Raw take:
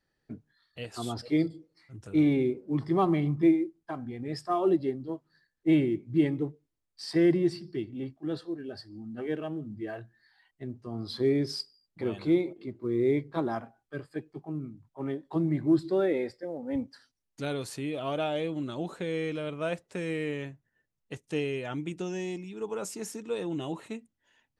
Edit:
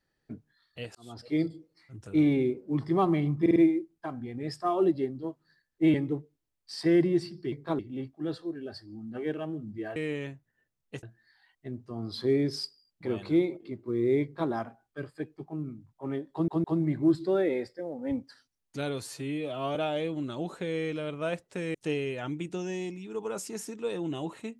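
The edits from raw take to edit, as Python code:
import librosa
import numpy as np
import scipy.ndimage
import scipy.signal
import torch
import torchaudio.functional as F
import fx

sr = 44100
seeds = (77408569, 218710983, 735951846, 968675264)

y = fx.edit(x, sr, fx.fade_in_span(start_s=0.95, length_s=0.53),
    fx.stutter(start_s=3.41, slice_s=0.05, count=4),
    fx.cut(start_s=5.79, length_s=0.45),
    fx.duplicate(start_s=13.19, length_s=0.27, to_s=7.82),
    fx.stutter(start_s=15.28, slice_s=0.16, count=3),
    fx.stretch_span(start_s=17.66, length_s=0.49, factor=1.5),
    fx.move(start_s=20.14, length_s=1.07, to_s=9.99), tone=tone)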